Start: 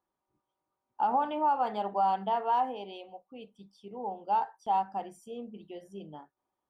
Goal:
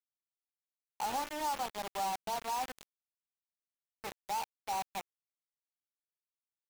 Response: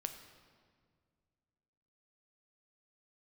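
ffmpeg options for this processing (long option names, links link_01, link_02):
-af "aeval=exprs='val(0)+0.5*0.00596*sgn(val(0))':channel_layout=same,acrusher=bits=4:mix=0:aa=0.000001,volume=-9dB" -ar 44100 -c:a aac -b:a 160k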